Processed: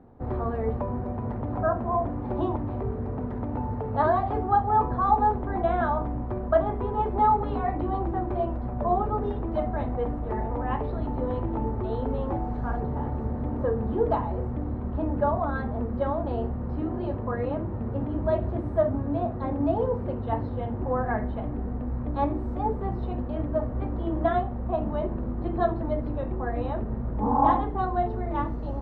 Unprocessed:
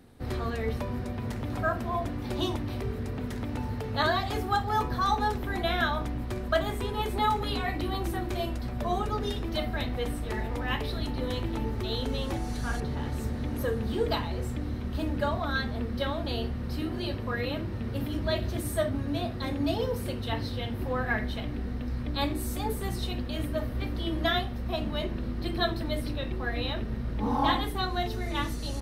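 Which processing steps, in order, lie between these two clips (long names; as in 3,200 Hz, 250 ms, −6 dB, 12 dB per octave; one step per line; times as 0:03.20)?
low-pass with resonance 900 Hz, resonance Q 1.7
level +2 dB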